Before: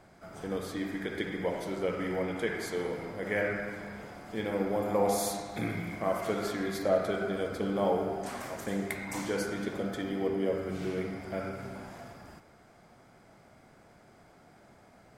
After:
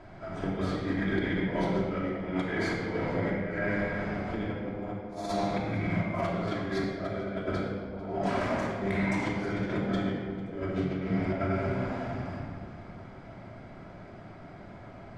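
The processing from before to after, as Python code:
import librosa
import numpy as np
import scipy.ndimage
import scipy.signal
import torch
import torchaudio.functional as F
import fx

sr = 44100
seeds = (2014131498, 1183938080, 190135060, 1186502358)

y = scipy.signal.sosfilt(scipy.signal.butter(2, 3600.0, 'lowpass', fs=sr, output='sos'), x)
y = fx.low_shelf(y, sr, hz=220.0, db=3.5)
y = fx.over_compress(y, sr, threshold_db=-36.0, ratio=-0.5)
y = fx.echo_feedback(y, sr, ms=448, feedback_pct=57, wet_db=-21)
y = fx.room_shoebox(y, sr, seeds[0], volume_m3=2300.0, walls='mixed', distance_m=2.9)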